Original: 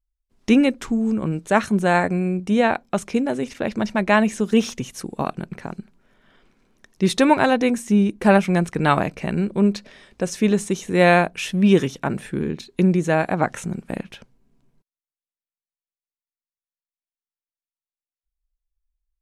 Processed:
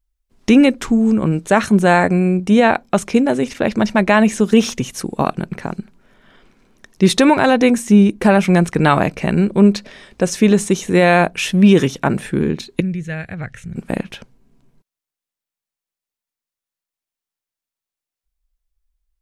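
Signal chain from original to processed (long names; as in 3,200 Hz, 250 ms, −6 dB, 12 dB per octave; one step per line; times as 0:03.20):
0:12.80–0:13.76: drawn EQ curve 110 Hz 0 dB, 310 Hz −22 dB, 470 Hz −17 dB, 970 Hz −27 dB, 1,800 Hz −8 dB, 7,600 Hz −17 dB
boost into a limiter +8 dB
level −1 dB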